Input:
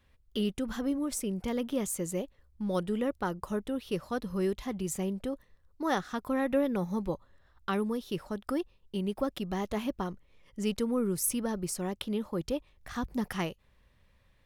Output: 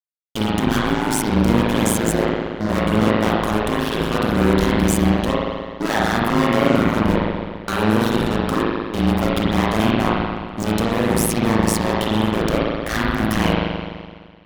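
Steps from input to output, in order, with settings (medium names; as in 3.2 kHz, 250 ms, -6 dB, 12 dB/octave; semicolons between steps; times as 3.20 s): fuzz box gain 45 dB, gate -52 dBFS; spring tank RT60 1.7 s, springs 42 ms, chirp 25 ms, DRR -6 dB; AM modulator 110 Hz, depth 95%; trim -5 dB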